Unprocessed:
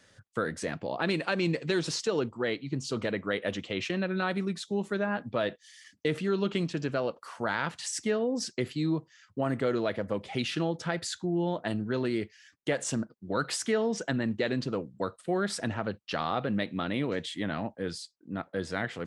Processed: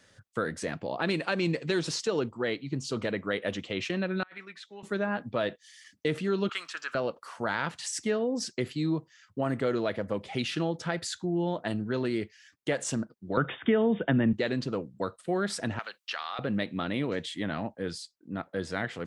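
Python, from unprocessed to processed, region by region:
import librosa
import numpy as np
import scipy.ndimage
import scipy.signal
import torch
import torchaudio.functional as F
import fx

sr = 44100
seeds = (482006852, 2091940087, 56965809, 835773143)

y = fx.chain(x, sr, fx.bandpass_q(hz=1900.0, q=2.0),
    fx.over_compress(threshold_db=-44.0, ratio=-0.5), at=(4.23, 4.83))
y = fx.chain(y, sr, fx.highpass_res(hz=1300.0, q=4.3),
    fx.high_shelf(hz=9900.0, db=9.0), at=(6.49, 6.95))
y = fx.chain(y, sr, fx.brickwall_lowpass(high_hz=3700.0),
    fx.low_shelf(hz=390.0, db=6.5),
    fx.band_squash(depth_pct=70), at=(13.37, 14.33))
y = fx.chain(y, sr, fx.highpass(hz=1300.0, slope=12),
    fx.band_squash(depth_pct=70), at=(15.79, 16.39))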